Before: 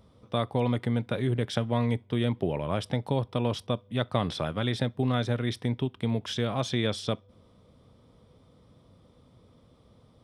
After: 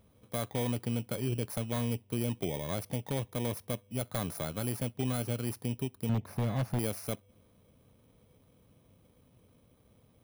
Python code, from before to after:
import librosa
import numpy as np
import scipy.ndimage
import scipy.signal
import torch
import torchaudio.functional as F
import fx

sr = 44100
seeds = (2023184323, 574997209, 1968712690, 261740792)

y = fx.bit_reversed(x, sr, seeds[0], block=16)
y = fx.bass_treble(y, sr, bass_db=8, treble_db=-13, at=(6.09, 6.79))
y = 10.0 ** (-17.0 / 20.0) * (np.abs((y / 10.0 ** (-17.0 / 20.0) + 3.0) % 4.0 - 2.0) - 1.0)
y = y * 10.0 ** (-5.5 / 20.0)